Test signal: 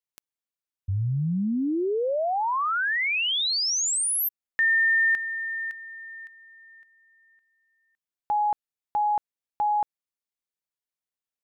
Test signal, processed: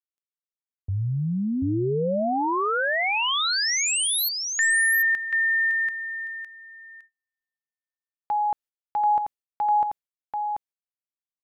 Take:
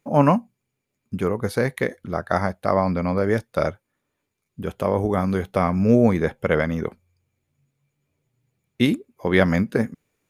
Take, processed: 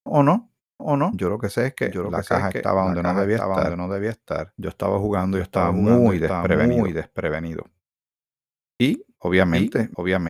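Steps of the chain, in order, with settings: gate -46 dBFS, range -40 dB; on a send: echo 0.736 s -4 dB

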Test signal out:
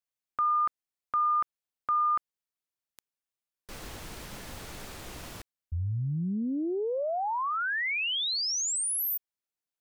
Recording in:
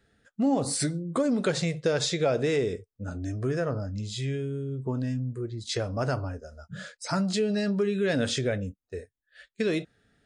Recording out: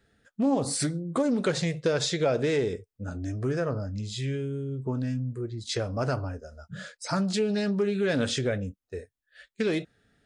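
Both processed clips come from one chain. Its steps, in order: Doppler distortion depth 0.12 ms

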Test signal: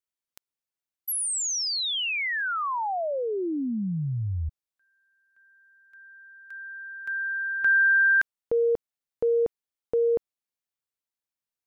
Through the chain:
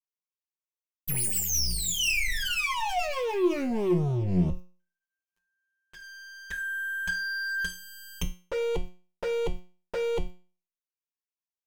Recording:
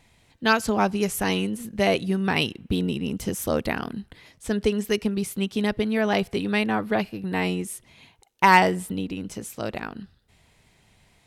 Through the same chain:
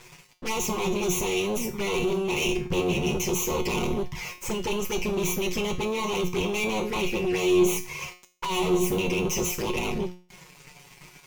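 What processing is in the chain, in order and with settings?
minimum comb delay 8.2 ms; ripple EQ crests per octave 0.77, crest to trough 15 dB; reverse; compressor 5:1, threshold -32 dBFS; reverse; sample leveller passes 5; envelope flanger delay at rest 10.1 ms, full sweep at -22 dBFS; in parallel at -9 dB: hard clip -27.5 dBFS; on the sum: resonator 180 Hz, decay 0.38 s, harmonics all, mix 80%; gain +7 dB

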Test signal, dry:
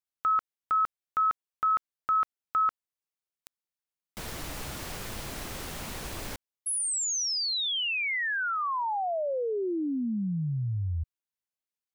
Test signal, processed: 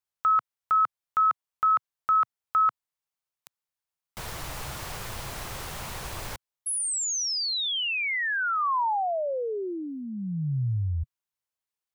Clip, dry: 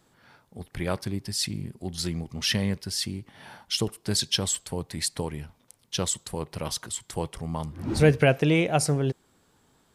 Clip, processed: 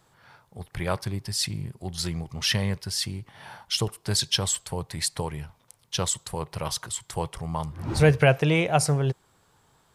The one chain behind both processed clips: graphic EQ 125/250/1000 Hz +4/-8/+4 dB; gain +1 dB

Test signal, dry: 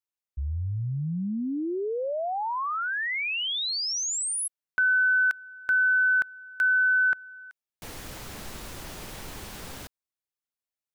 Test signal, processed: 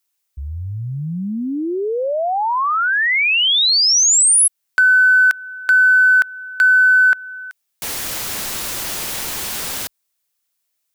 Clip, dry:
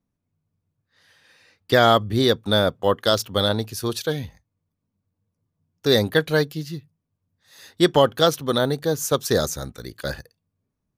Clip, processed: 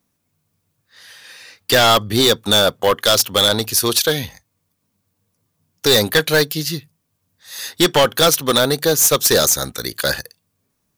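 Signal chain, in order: tilt +2.5 dB/oct; in parallel at -2.5 dB: compressor 6:1, threshold -29 dBFS; on the sum: hard clip -15.5 dBFS; gain +7 dB

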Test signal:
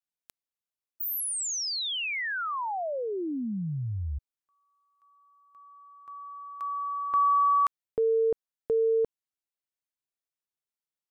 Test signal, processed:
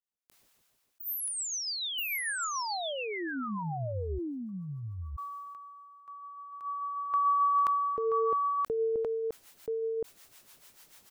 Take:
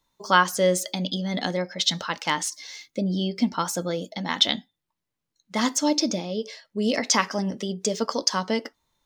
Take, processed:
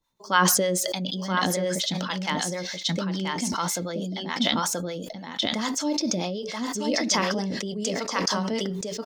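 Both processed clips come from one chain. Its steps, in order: echo 0.979 s -3.5 dB; harmonic tremolo 6.8 Hz, depth 70%, crossover 580 Hz; sustainer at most 21 dB/s; gain -2 dB

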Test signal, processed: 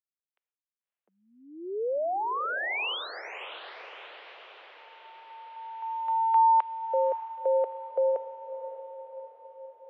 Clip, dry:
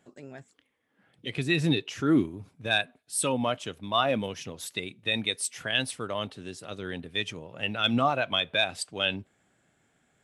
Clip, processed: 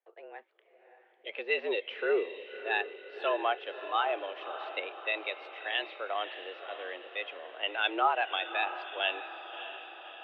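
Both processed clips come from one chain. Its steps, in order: gate with hold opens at -57 dBFS; tremolo triangle 0.67 Hz, depth 40%; mistuned SSB +99 Hz 330–3000 Hz; diffused feedback echo 0.596 s, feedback 58%, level -11 dB

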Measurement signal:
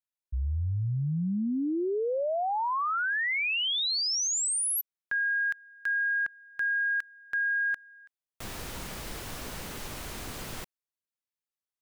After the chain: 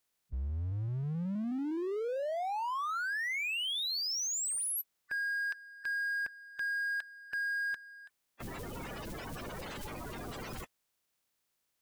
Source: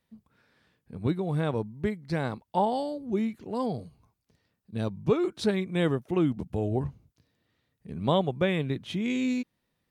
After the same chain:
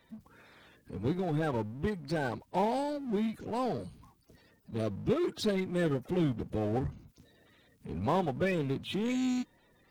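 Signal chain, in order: bin magnitudes rounded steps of 30 dB; power-law curve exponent 0.7; gain -6.5 dB

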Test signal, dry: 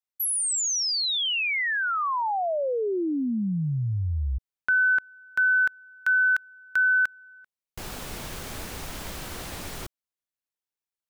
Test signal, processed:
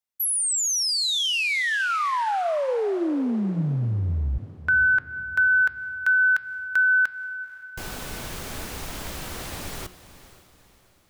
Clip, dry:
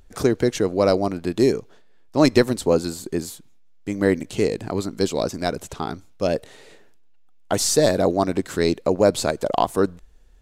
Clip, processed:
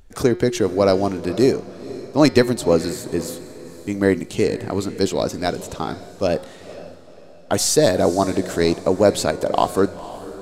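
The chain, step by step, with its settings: de-hum 180.4 Hz, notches 29; on a send: diffused feedback echo 0.5 s, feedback 42%, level -15.5 dB; on the sum: gain +2 dB

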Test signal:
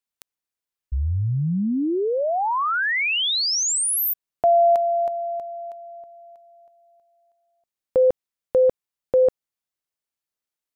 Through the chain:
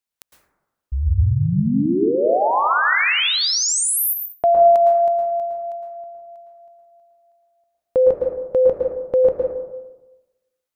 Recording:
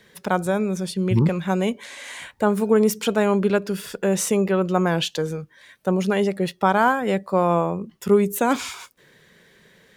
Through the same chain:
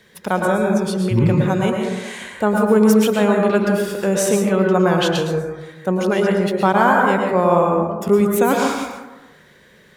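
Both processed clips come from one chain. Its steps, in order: plate-style reverb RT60 1.1 s, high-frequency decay 0.3×, pre-delay 0.1 s, DRR 0 dB; gain +1.5 dB

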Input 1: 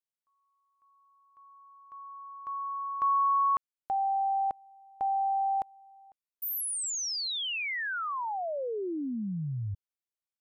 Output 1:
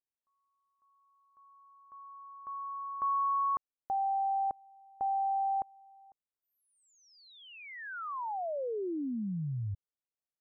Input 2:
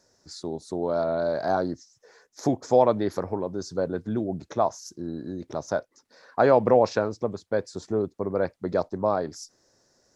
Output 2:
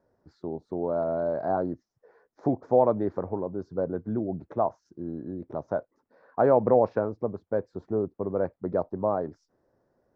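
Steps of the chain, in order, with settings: LPF 1100 Hz 12 dB/oct; gain -1.5 dB

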